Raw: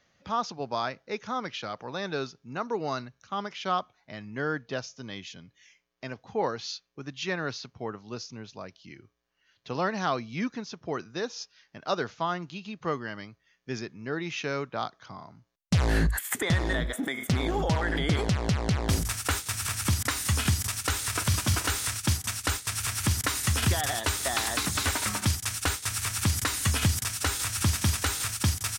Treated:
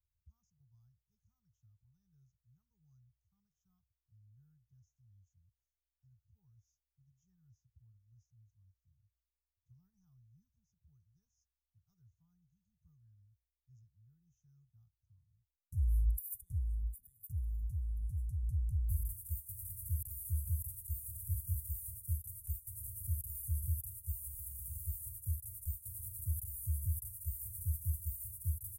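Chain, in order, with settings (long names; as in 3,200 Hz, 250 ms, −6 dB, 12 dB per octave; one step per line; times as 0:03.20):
inverse Chebyshev band-stop filter 260–4,600 Hz, stop band 60 dB
0:18.43–0:18.92: comb filter 0.8 ms, depth 44%
level −4 dB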